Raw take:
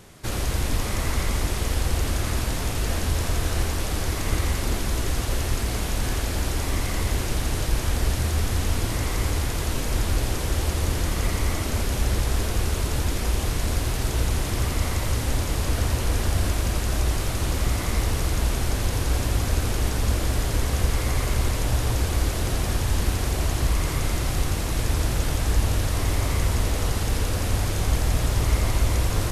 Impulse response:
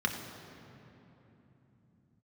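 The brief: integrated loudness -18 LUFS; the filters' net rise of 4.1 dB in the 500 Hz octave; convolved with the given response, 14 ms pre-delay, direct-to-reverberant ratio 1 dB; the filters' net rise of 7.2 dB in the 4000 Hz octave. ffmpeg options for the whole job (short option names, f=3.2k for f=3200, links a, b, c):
-filter_complex "[0:a]equalizer=f=500:t=o:g=5,equalizer=f=4k:t=o:g=9,asplit=2[a][b];[1:a]atrim=start_sample=2205,adelay=14[c];[b][c]afir=irnorm=-1:irlink=0,volume=-9dB[d];[a][d]amix=inputs=2:normalize=0,volume=3.5dB"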